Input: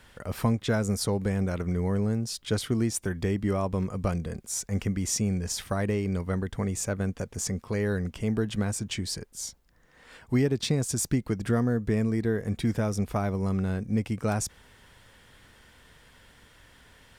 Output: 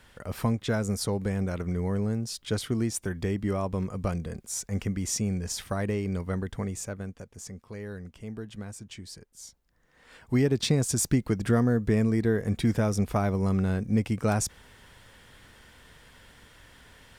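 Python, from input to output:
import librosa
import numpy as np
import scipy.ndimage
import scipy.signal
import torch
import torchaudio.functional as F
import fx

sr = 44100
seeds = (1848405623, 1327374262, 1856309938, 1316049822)

y = fx.gain(x, sr, db=fx.line((6.54, -1.5), (7.29, -11.0), (9.3, -11.0), (10.56, 2.0)))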